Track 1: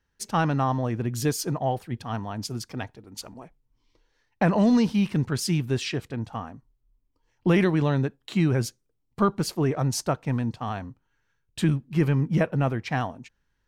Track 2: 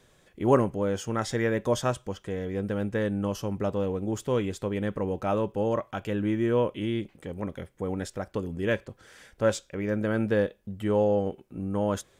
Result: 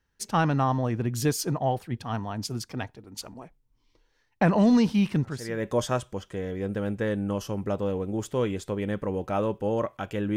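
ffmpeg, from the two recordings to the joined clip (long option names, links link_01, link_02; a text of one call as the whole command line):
ffmpeg -i cue0.wav -i cue1.wav -filter_complex "[0:a]apad=whole_dur=10.36,atrim=end=10.36,atrim=end=5.68,asetpts=PTS-STARTPTS[link_01];[1:a]atrim=start=1.1:end=6.3,asetpts=PTS-STARTPTS[link_02];[link_01][link_02]acrossfade=duration=0.52:curve1=qua:curve2=qua" out.wav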